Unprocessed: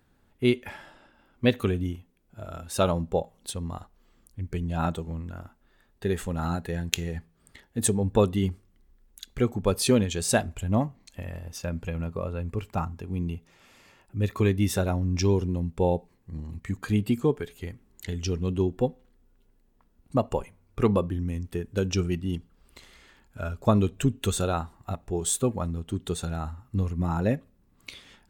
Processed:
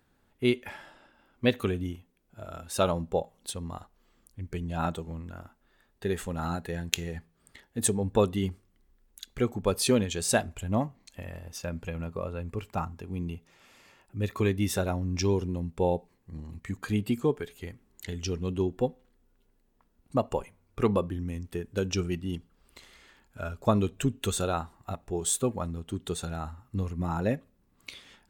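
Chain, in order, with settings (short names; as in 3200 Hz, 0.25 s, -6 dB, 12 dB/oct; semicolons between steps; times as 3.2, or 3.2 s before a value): low shelf 230 Hz -4.5 dB; gain -1 dB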